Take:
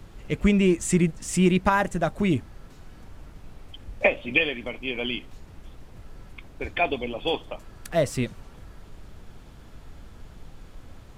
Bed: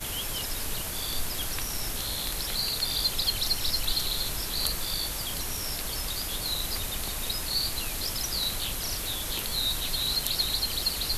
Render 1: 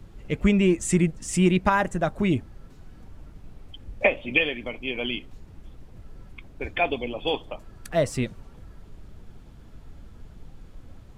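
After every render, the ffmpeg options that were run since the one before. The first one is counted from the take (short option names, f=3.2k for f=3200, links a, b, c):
-af "afftdn=nr=6:nf=-48"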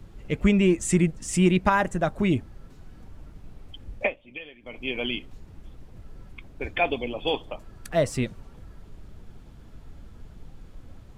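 -filter_complex "[0:a]asplit=3[a][b][c];[a]atrim=end=4.16,asetpts=PTS-STARTPTS,afade=t=out:st=3.95:d=0.21:silence=0.133352[d];[b]atrim=start=4.16:end=4.62,asetpts=PTS-STARTPTS,volume=-17.5dB[e];[c]atrim=start=4.62,asetpts=PTS-STARTPTS,afade=t=in:d=0.21:silence=0.133352[f];[d][e][f]concat=n=3:v=0:a=1"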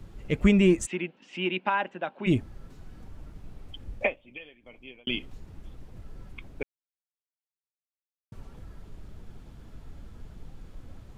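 -filter_complex "[0:a]asplit=3[a][b][c];[a]afade=t=out:st=0.85:d=0.02[d];[b]highpass=f=290:w=0.5412,highpass=f=290:w=1.3066,equalizer=f=310:t=q:w=4:g=-8,equalizer=f=440:t=q:w=4:g=-10,equalizer=f=650:t=q:w=4:g=-8,equalizer=f=1.2k:t=q:w=4:g=-9,equalizer=f=1.9k:t=q:w=4:g=-7,equalizer=f=2.8k:t=q:w=4:g=5,lowpass=f=3.1k:w=0.5412,lowpass=f=3.1k:w=1.3066,afade=t=in:st=0.85:d=0.02,afade=t=out:st=2.26:d=0.02[e];[c]afade=t=in:st=2.26:d=0.02[f];[d][e][f]amix=inputs=3:normalize=0,asplit=4[g][h][i][j];[g]atrim=end=5.07,asetpts=PTS-STARTPTS,afade=t=out:st=3.95:d=1.12[k];[h]atrim=start=5.07:end=6.63,asetpts=PTS-STARTPTS,afade=t=in:d=0.004:c=hsin,afade=t=out:st=1.556:d=0.004:c=hsin[l];[i]atrim=start=6.63:end=8.32,asetpts=PTS-STARTPTS,volume=0[m];[j]atrim=start=8.32,asetpts=PTS-STARTPTS,afade=t=in:d=0.004:c=hsin[n];[k][l][m][n]concat=n=4:v=0:a=1"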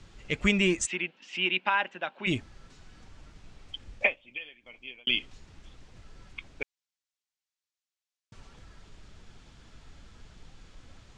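-af "lowpass=f=7.6k:w=0.5412,lowpass=f=7.6k:w=1.3066,tiltshelf=f=1.1k:g=-7.5"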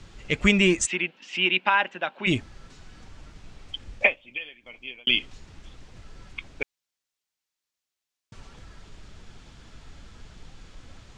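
-af "volume=5dB"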